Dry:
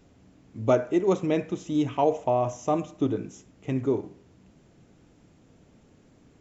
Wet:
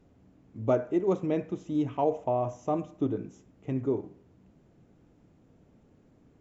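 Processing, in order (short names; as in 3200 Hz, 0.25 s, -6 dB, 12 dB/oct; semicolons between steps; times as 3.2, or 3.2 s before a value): high shelf 2000 Hz -10.5 dB; gain -3 dB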